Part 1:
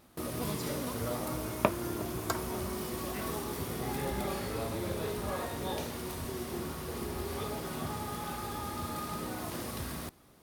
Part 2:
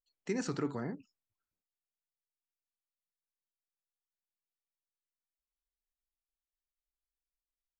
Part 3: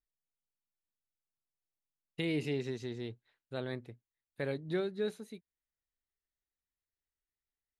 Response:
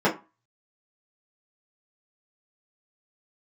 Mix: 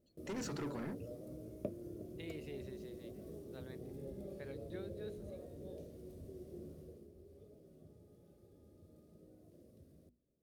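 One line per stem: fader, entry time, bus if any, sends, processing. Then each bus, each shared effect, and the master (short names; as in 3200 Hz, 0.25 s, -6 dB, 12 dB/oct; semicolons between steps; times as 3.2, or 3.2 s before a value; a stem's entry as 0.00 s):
6.81 s -11 dB -> 7.11 s -20.5 dB, 0.00 s, no send, EQ curve 590 Hz 0 dB, 880 Hz -27 dB, 6000 Hz -16 dB
+0.5 dB, 0.00 s, no send, soft clip -39 dBFS, distortion -6 dB
-14.5 dB, 0.00 s, no send, dry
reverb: off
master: notches 60/120/180/240 Hz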